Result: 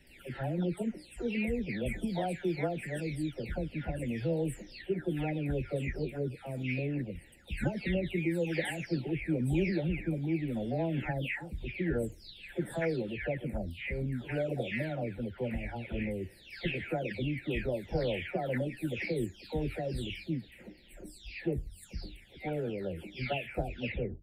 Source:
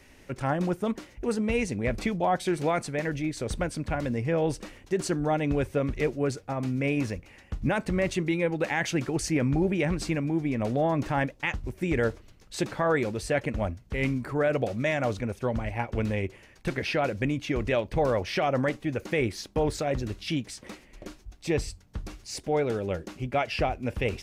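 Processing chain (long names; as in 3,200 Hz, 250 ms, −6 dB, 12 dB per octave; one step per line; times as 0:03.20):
every frequency bin delayed by itself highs early, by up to 542 ms
phaser with its sweep stopped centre 2,700 Hz, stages 4
level −3 dB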